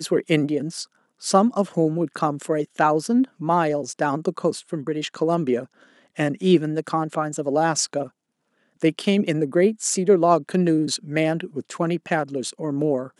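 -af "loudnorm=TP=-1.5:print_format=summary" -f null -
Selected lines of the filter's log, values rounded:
Input Integrated:    -22.6 LUFS
Input True Peak:      -4.3 dBTP
Input LRA:             2.4 LU
Input Threshold:     -32.9 LUFS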